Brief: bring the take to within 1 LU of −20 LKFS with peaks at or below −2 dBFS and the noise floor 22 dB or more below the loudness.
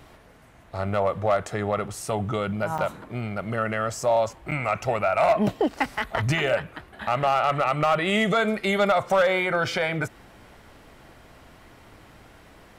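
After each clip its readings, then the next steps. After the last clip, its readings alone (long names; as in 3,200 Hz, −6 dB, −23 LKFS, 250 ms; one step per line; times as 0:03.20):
share of clipped samples 0.5%; peaks flattened at −14.0 dBFS; number of dropouts 2; longest dropout 6.8 ms; integrated loudness −24.5 LKFS; sample peak −14.0 dBFS; target loudness −20.0 LKFS
→ clipped peaks rebuilt −14 dBFS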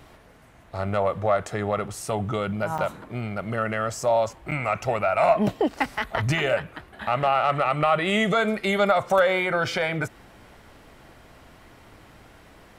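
share of clipped samples 0.0%; number of dropouts 2; longest dropout 6.8 ms
→ repair the gap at 0:02.78/0:04.51, 6.8 ms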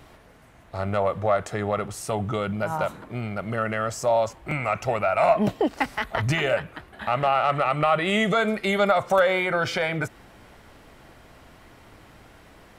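number of dropouts 0; integrated loudness −24.5 LKFS; sample peak −8.0 dBFS; target loudness −20.0 LKFS
→ level +4.5 dB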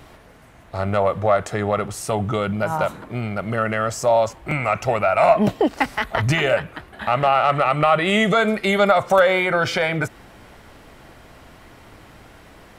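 integrated loudness −20.0 LKFS; sample peak −3.5 dBFS; background noise floor −47 dBFS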